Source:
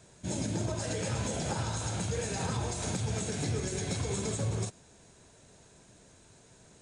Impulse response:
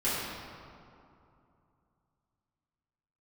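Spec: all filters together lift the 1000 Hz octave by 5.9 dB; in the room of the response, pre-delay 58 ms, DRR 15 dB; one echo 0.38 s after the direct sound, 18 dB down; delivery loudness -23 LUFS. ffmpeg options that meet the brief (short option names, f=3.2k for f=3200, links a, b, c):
-filter_complex "[0:a]equalizer=f=1k:t=o:g=7.5,aecho=1:1:380:0.126,asplit=2[a][b];[1:a]atrim=start_sample=2205,adelay=58[c];[b][c]afir=irnorm=-1:irlink=0,volume=-25.5dB[d];[a][d]amix=inputs=2:normalize=0,volume=9.5dB"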